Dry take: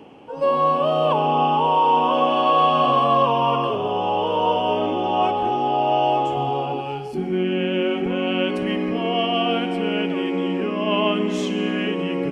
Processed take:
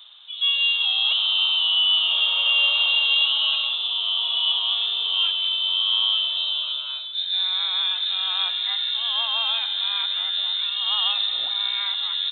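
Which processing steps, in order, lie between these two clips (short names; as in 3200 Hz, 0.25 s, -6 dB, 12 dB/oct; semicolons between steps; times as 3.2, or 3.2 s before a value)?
inverted band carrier 3900 Hz; tilt shelf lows -5 dB, about 1300 Hz; gain -6 dB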